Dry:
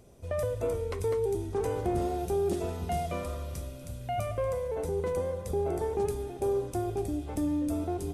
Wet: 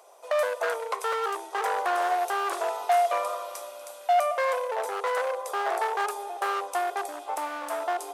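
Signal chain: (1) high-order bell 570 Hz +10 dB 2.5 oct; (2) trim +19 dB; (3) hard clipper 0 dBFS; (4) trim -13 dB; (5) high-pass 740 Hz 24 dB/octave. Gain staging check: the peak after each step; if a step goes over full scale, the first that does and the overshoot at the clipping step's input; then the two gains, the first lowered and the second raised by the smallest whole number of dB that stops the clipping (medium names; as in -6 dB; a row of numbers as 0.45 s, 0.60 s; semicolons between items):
-10.5 dBFS, +8.5 dBFS, 0.0 dBFS, -13.0 dBFS, -14.0 dBFS; step 2, 8.5 dB; step 2 +10 dB, step 4 -4 dB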